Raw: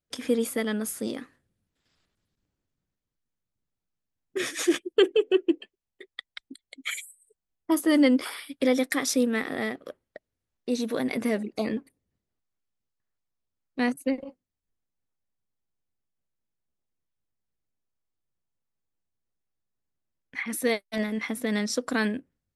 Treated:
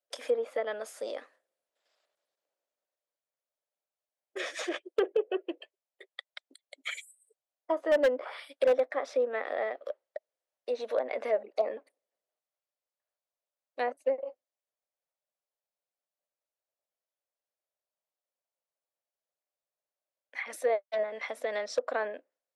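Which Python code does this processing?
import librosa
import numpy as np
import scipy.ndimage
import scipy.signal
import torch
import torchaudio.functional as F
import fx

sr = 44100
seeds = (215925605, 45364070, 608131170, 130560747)

y = fx.ladder_highpass(x, sr, hz=530.0, resonance_pct=65)
y = fx.env_lowpass_down(y, sr, base_hz=1400.0, full_db=-32.0)
y = 10.0 ** (-24.0 / 20.0) * (np.abs((y / 10.0 ** (-24.0 / 20.0) + 3.0) % 4.0 - 2.0) - 1.0)
y = F.gain(torch.from_numpy(y), 6.5).numpy()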